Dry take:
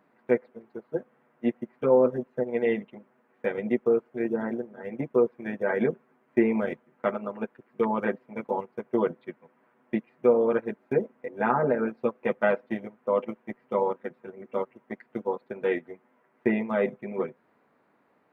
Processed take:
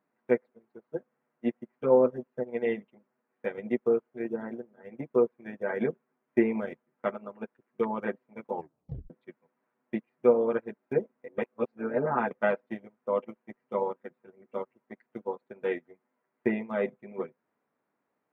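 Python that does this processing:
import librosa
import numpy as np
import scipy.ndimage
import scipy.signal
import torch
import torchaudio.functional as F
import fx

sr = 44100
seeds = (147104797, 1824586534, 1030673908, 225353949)

y = fx.edit(x, sr, fx.tape_stop(start_s=8.53, length_s=0.57),
    fx.reverse_span(start_s=11.38, length_s=0.93), tone=tone)
y = fx.upward_expand(y, sr, threshold_db=-44.0, expansion=1.5)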